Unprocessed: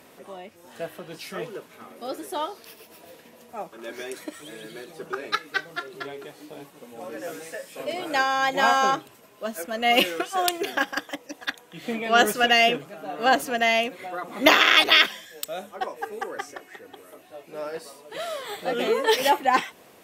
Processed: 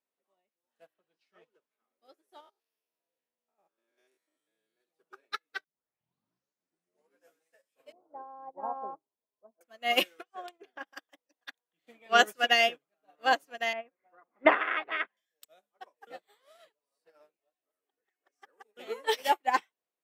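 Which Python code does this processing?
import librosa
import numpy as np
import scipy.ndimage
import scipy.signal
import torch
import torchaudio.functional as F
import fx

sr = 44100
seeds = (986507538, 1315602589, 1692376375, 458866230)

y = fx.lowpass(x, sr, hz=fx.line((0.93, 4000.0), (1.7, 9300.0)), slope=12, at=(0.93, 1.7), fade=0.02)
y = fx.spec_steps(y, sr, hold_ms=100, at=(2.4, 4.81))
y = fx.cheby1_lowpass(y, sr, hz=990.0, order=4, at=(7.92, 9.61))
y = fx.lowpass(y, sr, hz=1500.0, slope=6, at=(10.22, 10.85), fade=0.02)
y = fx.lowpass(y, sr, hz=2000.0, slope=24, at=(13.73, 15.17))
y = fx.edit(y, sr, fx.tape_start(start_s=5.64, length_s=1.65),
    fx.reverse_span(start_s=16.07, length_s=2.7), tone=tone)
y = scipy.signal.sosfilt(scipy.signal.butter(2, 120.0, 'highpass', fs=sr, output='sos'), y)
y = fx.low_shelf(y, sr, hz=230.0, db=-12.0)
y = fx.upward_expand(y, sr, threshold_db=-42.0, expansion=2.5)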